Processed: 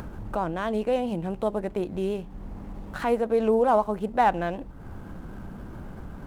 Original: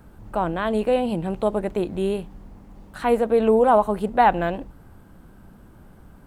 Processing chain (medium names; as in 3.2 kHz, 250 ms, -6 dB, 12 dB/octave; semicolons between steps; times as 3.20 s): median filter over 9 samples; vibrato 7.7 Hz 33 cents; upward compressor, threshold -21 dBFS; trim -4.5 dB